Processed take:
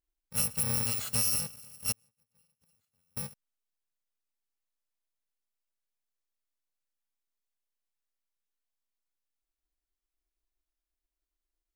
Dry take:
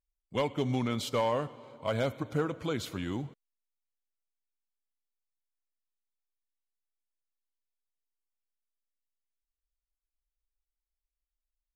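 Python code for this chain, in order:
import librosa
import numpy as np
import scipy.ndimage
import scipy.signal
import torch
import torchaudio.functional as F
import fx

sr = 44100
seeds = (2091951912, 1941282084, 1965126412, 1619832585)

y = fx.bit_reversed(x, sr, seeds[0], block=128)
y = fx.gate_flip(y, sr, shuts_db=-35.0, range_db=-41, at=(1.92, 3.17))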